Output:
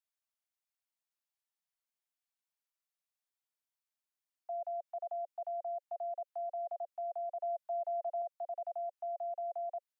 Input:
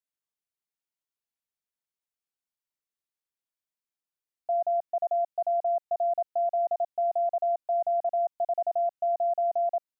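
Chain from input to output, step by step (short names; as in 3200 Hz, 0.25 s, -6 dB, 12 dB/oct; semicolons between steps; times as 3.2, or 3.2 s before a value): steep high-pass 560 Hz 96 dB/oct; limiter -32.5 dBFS, peak gain reduction 10.5 dB; 7.41–8.22 comb 4.7 ms, depth 79%; gain -2 dB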